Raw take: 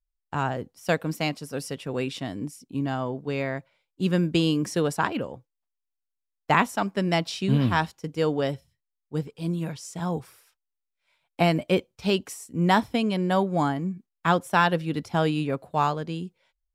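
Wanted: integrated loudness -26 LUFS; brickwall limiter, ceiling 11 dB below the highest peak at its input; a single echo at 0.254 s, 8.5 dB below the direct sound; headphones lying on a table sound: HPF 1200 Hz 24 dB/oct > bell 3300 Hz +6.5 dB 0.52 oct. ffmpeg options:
-af "alimiter=limit=-16.5dB:level=0:latency=1,highpass=f=1.2k:w=0.5412,highpass=f=1.2k:w=1.3066,equalizer=f=3.3k:t=o:w=0.52:g=6.5,aecho=1:1:254:0.376,volume=9dB"

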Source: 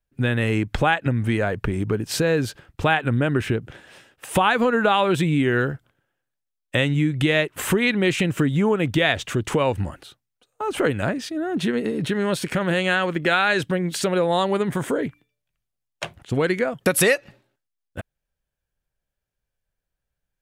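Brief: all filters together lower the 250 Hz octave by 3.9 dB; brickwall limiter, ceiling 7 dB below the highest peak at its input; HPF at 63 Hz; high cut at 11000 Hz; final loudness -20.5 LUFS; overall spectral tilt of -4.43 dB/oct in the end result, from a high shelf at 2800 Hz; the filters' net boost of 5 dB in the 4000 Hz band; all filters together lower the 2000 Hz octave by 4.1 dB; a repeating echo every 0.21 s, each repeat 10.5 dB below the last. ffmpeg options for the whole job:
-af "highpass=63,lowpass=11k,equalizer=f=250:t=o:g=-5.5,equalizer=f=2k:t=o:g=-8.5,highshelf=f=2.8k:g=3,equalizer=f=4k:t=o:g=7,alimiter=limit=-12dB:level=0:latency=1,aecho=1:1:210|420|630:0.299|0.0896|0.0269,volume=4dB"

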